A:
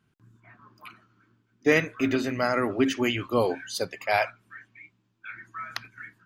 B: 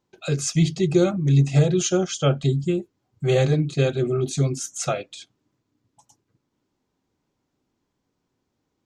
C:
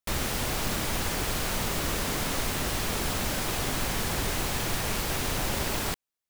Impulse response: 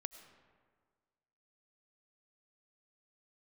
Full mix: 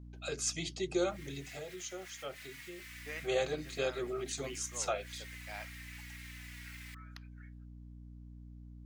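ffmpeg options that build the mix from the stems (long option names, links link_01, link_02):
-filter_complex "[0:a]highpass=frequency=1100:poles=1,adelay=1400,volume=-19dB[link_01];[1:a]highpass=490,aeval=exprs='val(0)+0.00891*(sin(2*PI*60*n/s)+sin(2*PI*2*60*n/s)/2+sin(2*PI*3*60*n/s)/3+sin(2*PI*4*60*n/s)/4+sin(2*PI*5*60*n/s)/5)':channel_layout=same,volume=3dB,afade=type=out:start_time=1.22:duration=0.41:silence=0.281838,afade=type=in:start_time=2.77:duration=0.35:silence=0.298538,asplit=2[link_02][link_03];[2:a]highpass=frequency=2000:width_type=q:width=4.9,asplit=2[link_04][link_05];[link_05]adelay=3.6,afreqshift=-2[link_06];[link_04][link_06]amix=inputs=2:normalize=1,adelay=1000,volume=-19.5dB[link_07];[link_03]apad=whole_len=321802[link_08];[link_07][link_08]sidechaincompress=threshold=-48dB:ratio=8:attack=16:release=110[link_09];[link_01][link_02][link_09]amix=inputs=3:normalize=0"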